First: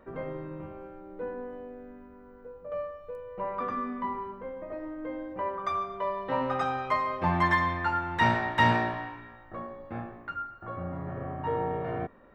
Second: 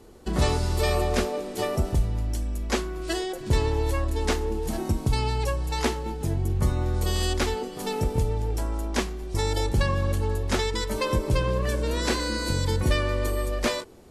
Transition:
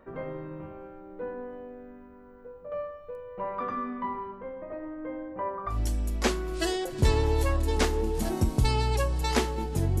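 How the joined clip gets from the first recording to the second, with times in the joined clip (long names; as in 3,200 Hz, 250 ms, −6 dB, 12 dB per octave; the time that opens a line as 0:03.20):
first
0:03.83–0:05.79: low-pass filter 6,100 Hz → 1,500 Hz
0:05.72: continue with second from 0:02.20, crossfade 0.14 s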